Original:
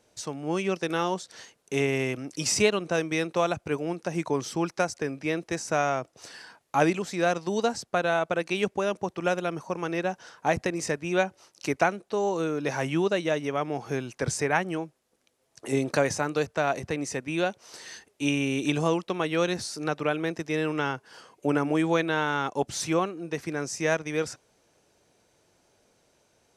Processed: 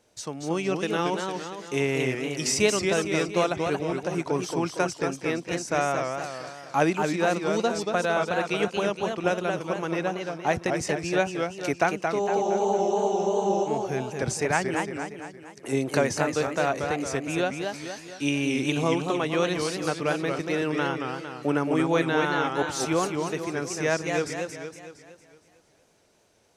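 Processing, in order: spectral freeze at 12.28, 1.39 s; warbling echo 0.23 s, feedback 50%, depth 178 cents, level -5 dB

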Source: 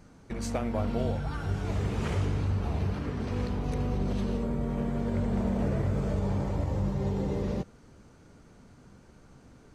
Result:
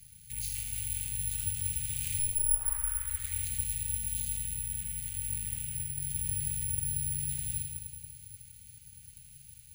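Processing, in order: overloaded stage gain 35.5 dB; elliptic band-stop 110–2600 Hz, stop band 70 dB; 5.54–6.15 compressor, threshold -41 dBFS, peak gain reduction 5.5 dB; HPF 84 Hz 6 dB/oct; 2.19 tape start 1.34 s; thinning echo 81 ms, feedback 72%, level -7.5 dB; shoebox room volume 1500 m³, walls mixed, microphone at 0.96 m; careless resampling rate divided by 4×, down filtered, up zero stuff; gain +3.5 dB

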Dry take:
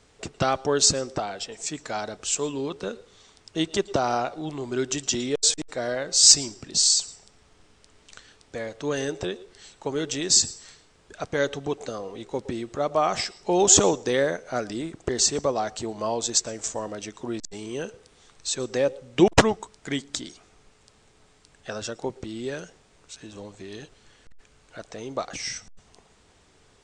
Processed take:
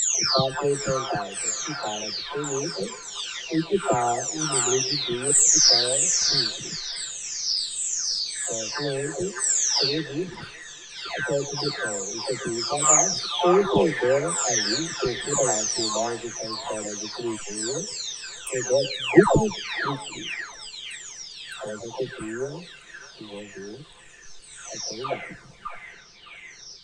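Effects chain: spectral delay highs early, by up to 0.91 s; delay with a stepping band-pass 0.61 s, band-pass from 1500 Hz, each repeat 0.7 oct, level -1 dB; gain +3.5 dB

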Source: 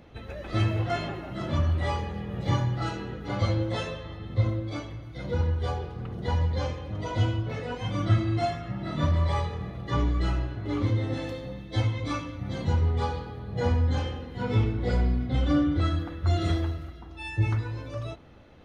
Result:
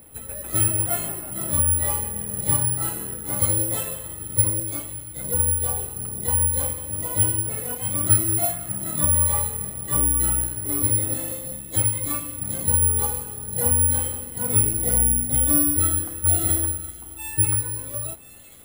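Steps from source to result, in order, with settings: thin delay 1.013 s, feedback 69%, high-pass 2500 Hz, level -13 dB; careless resampling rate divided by 4×, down filtered, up zero stuff; gain -2 dB

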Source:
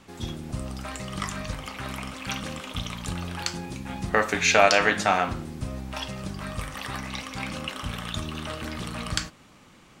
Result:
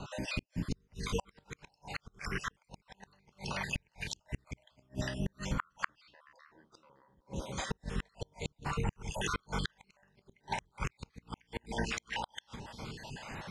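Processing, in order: random spectral dropouts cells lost 53%; rotary speaker horn 0.8 Hz; compressor 1.5:1, threshold -51 dBFS, peak gain reduction 11.5 dB; analogue delay 0.149 s, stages 1024, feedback 52%, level -9 dB; speed mistake 45 rpm record played at 33 rpm; dynamic EQ 100 Hz, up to -4 dB, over -54 dBFS, Q 0.76; flipped gate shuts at -35 dBFS, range -39 dB; gain +13.5 dB

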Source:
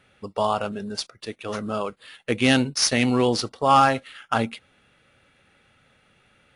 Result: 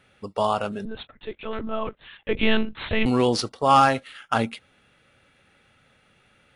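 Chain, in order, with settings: 0.85–3.06 monotone LPC vocoder at 8 kHz 220 Hz

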